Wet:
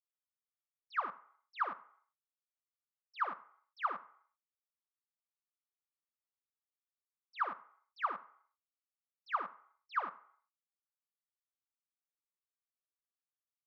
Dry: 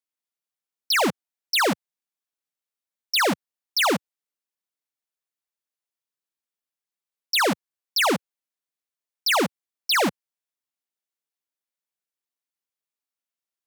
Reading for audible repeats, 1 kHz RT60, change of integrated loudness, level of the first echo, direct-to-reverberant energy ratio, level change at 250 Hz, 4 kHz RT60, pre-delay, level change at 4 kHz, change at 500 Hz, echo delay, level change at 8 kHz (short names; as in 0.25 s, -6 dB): 1, 0.65 s, -17.0 dB, -23.0 dB, 11.5 dB, -33.0 dB, 0.65 s, 3 ms, -34.5 dB, -26.0 dB, 83 ms, under -40 dB